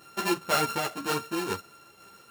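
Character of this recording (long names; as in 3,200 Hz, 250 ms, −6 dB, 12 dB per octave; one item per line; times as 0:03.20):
a buzz of ramps at a fixed pitch in blocks of 32 samples
tremolo saw down 2 Hz, depth 35%
a shimmering, thickened sound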